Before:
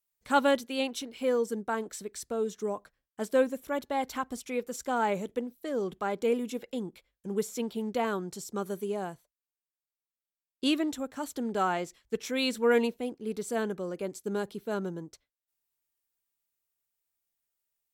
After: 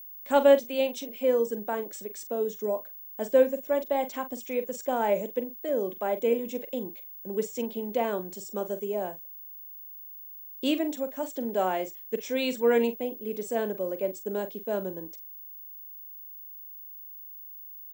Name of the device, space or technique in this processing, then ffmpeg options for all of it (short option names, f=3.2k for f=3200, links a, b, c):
old television with a line whistle: -filter_complex "[0:a]highpass=f=190:w=0.5412,highpass=f=190:w=1.3066,equalizer=f=580:t=q:w=4:g=9,equalizer=f=1.3k:t=q:w=4:g=-9,equalizer=f=4.3k:t=q:w=4:g=-7,lowpass=f=8.4k:w=0.5412,lowpass=f=8.4k:w=1.3066,aeval=exprs='val(0)+0.00794*sin(2*PI*15625*n/s)':c=same,asettb=1/sr,asplit=3[a][b][c];[a]atrim=end=5.574[d];[b]atrim=start=5.57:end=6.26,asetpts=PTS-STARTPTS,afade=t=in:d=0.004:c=qsin,afade=t=out:st=0.686:d=0.004:c=qsin,equalizer=f=5.1k:w=4.1:g=-5.5[e];[c]atrim=start=6.256[f];[d][e]acrossfade=d=0.004:c1=hsin:c2=qsin[g];[g][f]acrossfade=d=0.004:c1=qsin:c2=hsin,asplit=2[h][i];[i]adelay=43,volume=-11.5dB[j];[h][j]amix=inputs=2:normalize=0"